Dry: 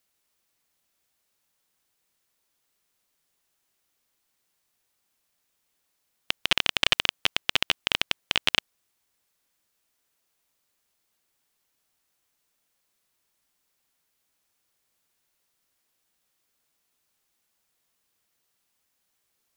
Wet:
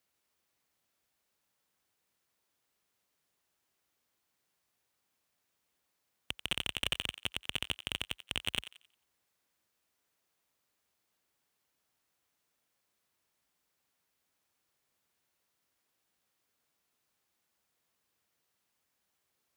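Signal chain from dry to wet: high-pass 48 Hz 24 dB/octave; treble shelf 3 kHz -5.5 dB; saturation -17.5 dBFS, distortion -6 dB; thinning echo 89 ms, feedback 34%, high-pass 950 Hz, level -13 dB; trim -1.5 dB

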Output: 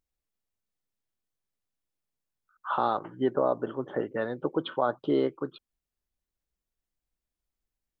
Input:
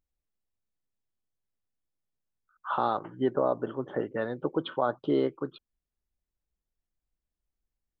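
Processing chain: bass shelf 130 Hz -4 dB; trim +1 dB

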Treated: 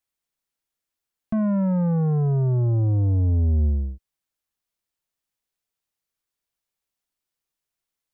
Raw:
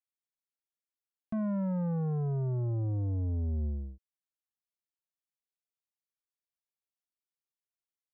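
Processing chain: bass shelf 71 Hz +7.5 dB; trim +9 dB

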